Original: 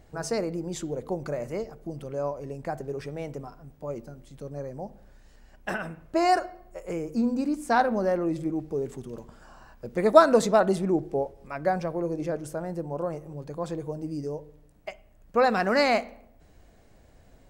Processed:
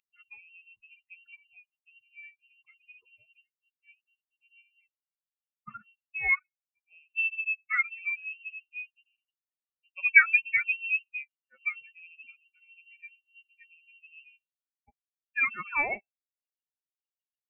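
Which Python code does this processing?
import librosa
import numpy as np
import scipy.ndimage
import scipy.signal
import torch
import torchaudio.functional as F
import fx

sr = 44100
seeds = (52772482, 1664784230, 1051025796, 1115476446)

y = fx.bin_expand(x, sr, power=3.0)
y = scipy.signal.sosfilt(scipy.signal.butter(4, 200.0, 'highpass', fs=sr, output='sos'), y)
y = fx.freq_invert(y, sr, carrier_hz=2900)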